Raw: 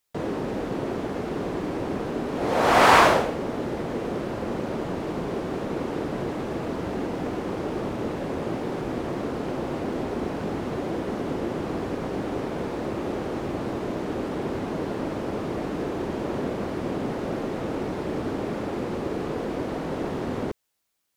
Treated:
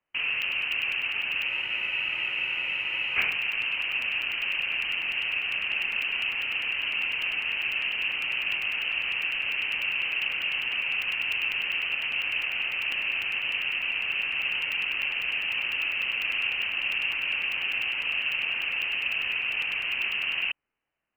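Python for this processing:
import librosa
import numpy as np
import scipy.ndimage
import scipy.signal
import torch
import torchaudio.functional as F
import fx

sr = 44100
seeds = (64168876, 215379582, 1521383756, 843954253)

y = fx.freq_invert(x, sr, carrier_hz=3000)
y = fx.buffer_crackle(y, sr, first_s=0.42, period_s=0.1, block=128, kind='zero')
y = fx.spec_freeze(y, sr, seeds[0], at_s=1.51, hold_s=1.66)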